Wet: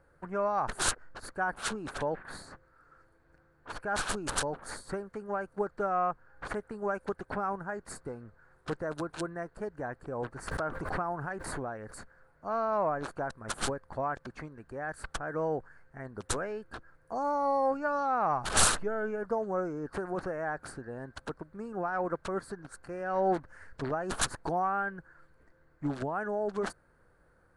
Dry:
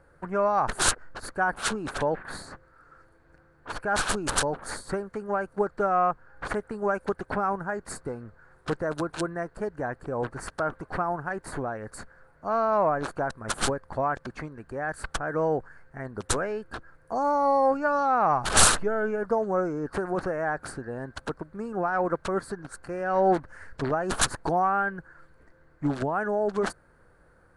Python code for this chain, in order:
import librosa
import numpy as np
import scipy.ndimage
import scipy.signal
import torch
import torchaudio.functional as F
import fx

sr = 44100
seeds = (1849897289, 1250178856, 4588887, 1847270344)

y = fx.pre_swell(x, sr, db_per_s=28.0, at=(10.47, 11.99), fade=0.02)
y = y * 10.0 ** (-6.0 / 20.0)